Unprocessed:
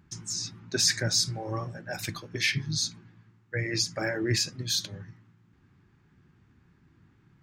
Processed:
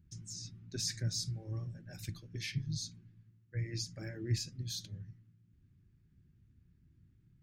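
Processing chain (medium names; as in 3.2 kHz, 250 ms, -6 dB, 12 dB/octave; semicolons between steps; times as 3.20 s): amplifier tone stack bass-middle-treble 10-0-1; trim +8 dB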